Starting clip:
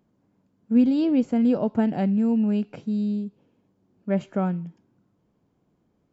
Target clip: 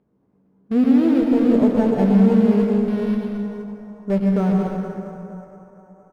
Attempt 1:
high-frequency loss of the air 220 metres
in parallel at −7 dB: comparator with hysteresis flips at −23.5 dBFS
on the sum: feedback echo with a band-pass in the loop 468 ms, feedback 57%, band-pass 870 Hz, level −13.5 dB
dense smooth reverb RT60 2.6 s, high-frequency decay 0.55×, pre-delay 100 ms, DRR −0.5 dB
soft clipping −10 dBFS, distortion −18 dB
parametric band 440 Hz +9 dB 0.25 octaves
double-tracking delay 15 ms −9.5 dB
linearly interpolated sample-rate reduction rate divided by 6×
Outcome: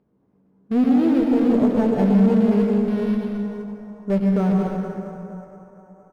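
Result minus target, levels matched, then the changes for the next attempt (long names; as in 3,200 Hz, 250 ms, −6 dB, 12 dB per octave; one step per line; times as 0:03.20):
soft clipping: distortion +16 dB
change: soft clipping −0.5 dBFS, distortion −33 dB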